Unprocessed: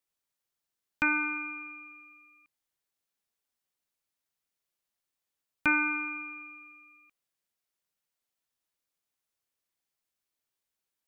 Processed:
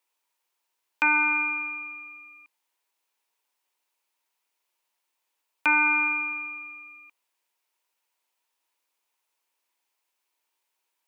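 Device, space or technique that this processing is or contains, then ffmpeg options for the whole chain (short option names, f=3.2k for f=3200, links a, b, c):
laptop speaker: -af "highpass=f=300:w=0.5412,highpass=f=300:w=1.3066,equalizer=f=940:t=o:w=0.29:g=12,equalizer=f=2.5k:t=o:w=0.56:g=5.5,alimiter=limit=-17dB:level=0:latency=1:release=379,volume=6dB"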